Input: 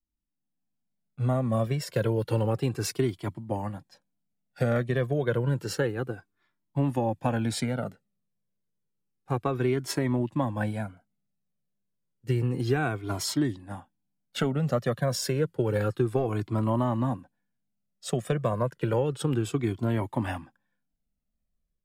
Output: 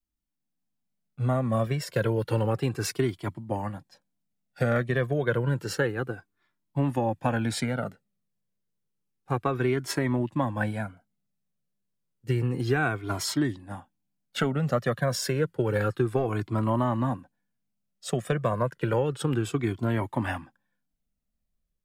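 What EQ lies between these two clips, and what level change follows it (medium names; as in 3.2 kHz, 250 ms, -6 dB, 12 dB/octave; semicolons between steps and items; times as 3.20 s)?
dynamic bell 1.6 kHz, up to +5 dB, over -45 dBFS, Q 1.1; 0.0 dB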